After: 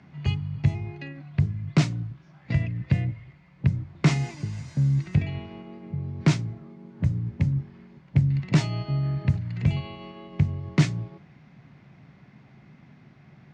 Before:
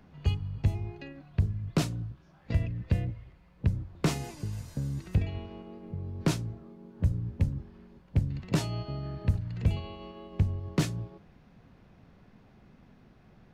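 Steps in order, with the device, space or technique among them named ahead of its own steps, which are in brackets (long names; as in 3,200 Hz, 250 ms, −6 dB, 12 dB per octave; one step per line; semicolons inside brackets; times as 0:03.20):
car door speaker (loudspeaker in its box 100–7,200 Hz, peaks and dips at 140 Hz +10 dB, 480 Hz −7 dB, 2,100 Hz +8 dB)
level +3.5 dB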